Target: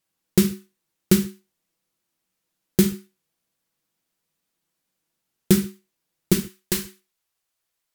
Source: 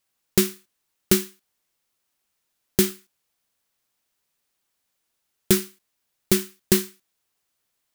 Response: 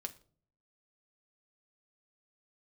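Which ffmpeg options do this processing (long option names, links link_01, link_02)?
-filter_complex "[0:a]asetnsamples=nb_out_samples=441:pad=0,asendcmd='6.33 equalizer g -5.5',equalizer=frequency=210:width_type=o:width=2.1:gain=7.5[link_01];[1:a]atrim=start_sample=2205,afade=type=out:start_time=0.18:duration=0.01,atrim=end_sample=8379,asetrate=37485,aresample=44100[link_02];[link_01][link_02]afir=irnorm=-1:irlink=0,volume=-1dB"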